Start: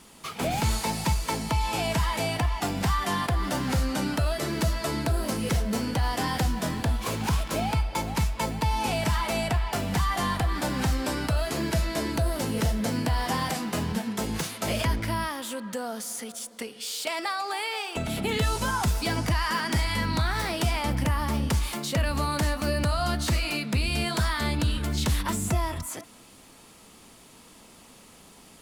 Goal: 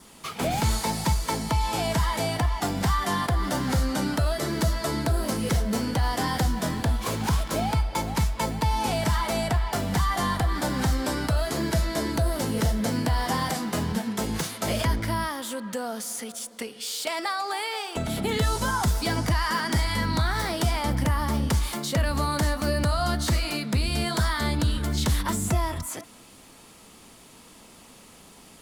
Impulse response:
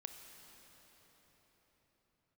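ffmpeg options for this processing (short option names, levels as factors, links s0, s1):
-af "adynamicequalizer=threshold=0.00251:dfrequency=2600:dqfactor=4.5:tfrequency=2600:tqfactor=4.5:attack=5:release=100:ratio=0.375:range=4:mode=cutabove:tftype=bell,volume=1.19"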